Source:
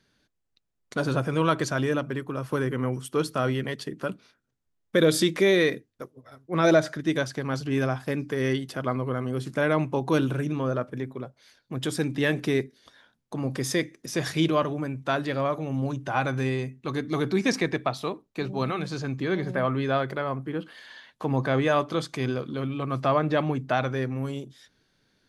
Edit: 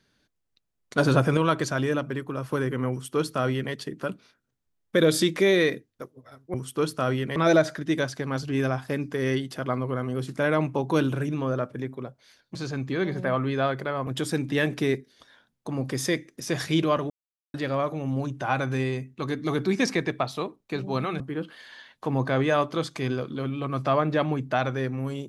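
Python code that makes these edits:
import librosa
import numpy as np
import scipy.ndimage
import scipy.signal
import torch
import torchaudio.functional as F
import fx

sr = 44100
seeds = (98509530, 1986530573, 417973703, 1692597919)

y = fx.edit(x, sr, fx.clip_gain(start_s=0.98, length_s=0.39, db=5.5),
    fx.duplicate(start_s=2.91, length_s=0.82, to_s=6.54),
    fx.silence(start_s=14.76, length_s=0.44),
    fx.move(start_s=18.86, length_s=1.52, to_s=11.73), tone=tone)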